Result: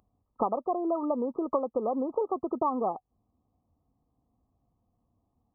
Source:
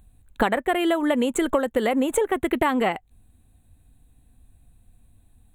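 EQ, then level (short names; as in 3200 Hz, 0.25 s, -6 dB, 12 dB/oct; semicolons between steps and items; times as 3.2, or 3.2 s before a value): HPF 150 Hz 6 dB/oct; brick-wall FIR low-pass 1300 Hz; tilt +2 dB/oct; -4.0 dB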